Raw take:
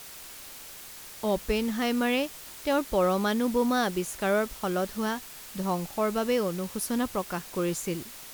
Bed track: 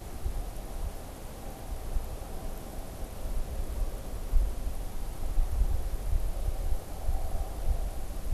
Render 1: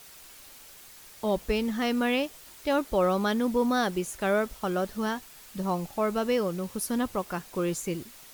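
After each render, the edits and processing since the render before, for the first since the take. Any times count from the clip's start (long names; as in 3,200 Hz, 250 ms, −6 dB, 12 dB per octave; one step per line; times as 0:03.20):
broadband denoise 6 dB, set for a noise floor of −45 dBFS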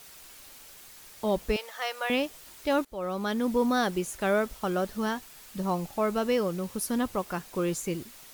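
0:01.56–0:02.10: elliptic high-pass filter 540 Hz, stop band 80 dB
0:02.85–0:03.52: fade in, from −20 dB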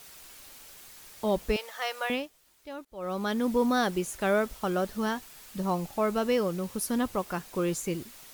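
0:02.04–0:03.12: duck −15 dB, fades 0.26 s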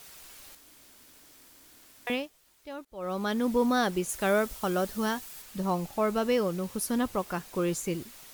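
0:00.55–0:02.07: fill with room tone
0:04.09–0:05.42: high-shelf EQ 5,100 Hz +6.5 dB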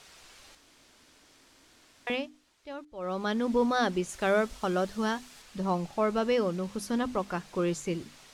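low-pass filter 6,300 Hz 12 dB per octave
mains-hum notches 50/100/150/200/250/300 Hz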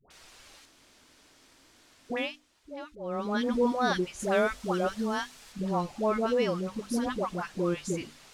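all-pass dispersion highs, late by 106 ms, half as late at 760 Hz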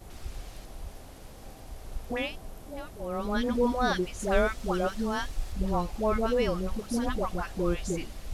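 mix in bed track −5.5 dB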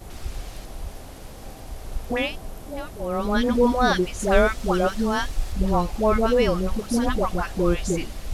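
level +7 dB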